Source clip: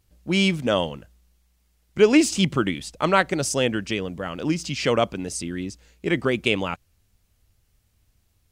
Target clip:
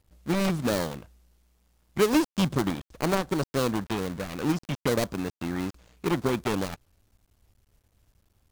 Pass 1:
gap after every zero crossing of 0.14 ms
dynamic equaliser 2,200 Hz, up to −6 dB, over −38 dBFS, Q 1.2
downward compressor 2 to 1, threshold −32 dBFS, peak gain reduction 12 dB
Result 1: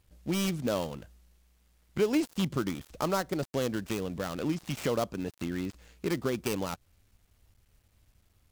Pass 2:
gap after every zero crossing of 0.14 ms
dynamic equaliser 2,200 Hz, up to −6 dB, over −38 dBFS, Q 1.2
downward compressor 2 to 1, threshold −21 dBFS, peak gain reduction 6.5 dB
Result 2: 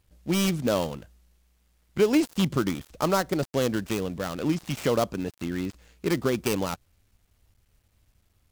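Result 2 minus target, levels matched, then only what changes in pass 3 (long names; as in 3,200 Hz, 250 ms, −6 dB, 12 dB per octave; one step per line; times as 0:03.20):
gap after every zero crossing: distortion −6 dB
change: gap after every zero crossing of 0.43 ms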